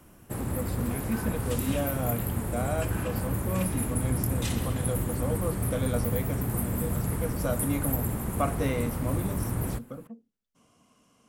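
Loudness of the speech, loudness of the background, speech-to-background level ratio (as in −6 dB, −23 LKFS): −34.5 LKFS, −30.5 LKFS, −4.0 dB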